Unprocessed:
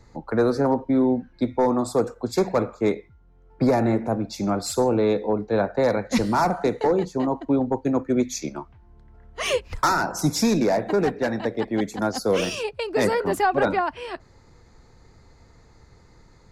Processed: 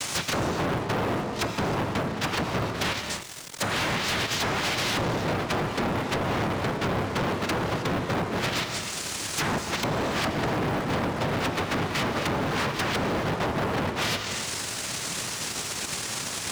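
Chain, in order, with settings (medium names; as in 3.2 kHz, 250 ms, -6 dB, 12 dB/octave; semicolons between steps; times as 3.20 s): 2.82–4.97 s: brick-wall FIR band-stop 220–3500 Hz; noise-vocoded speech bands 1; low-pass that closes with the level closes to 910 Hz, closed at -21.5 dBFS; treble shelf 4.8 kHz +10 dB; low-pass that closes with the level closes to 1.6 kHz, closed at -24.5 dBFS; compression 12:1, threshold -37 dBFS, peak gain reduction 14.5 dB; bass shelf 190 Hz +11 dB; gated-style reverb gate 340 ms flat, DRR 10.5 dB; waveshaping leveller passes 5; three bands compressed up and down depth 40%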